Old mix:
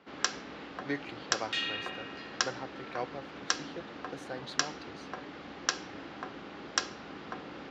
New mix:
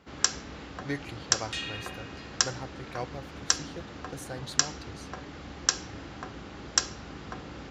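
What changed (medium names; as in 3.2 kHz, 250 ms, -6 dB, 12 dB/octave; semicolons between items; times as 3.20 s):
second sound: send -11.0 dB; master: remove three-band isolator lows -18 dB, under 180 Hz, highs -21 dB, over 5 kHz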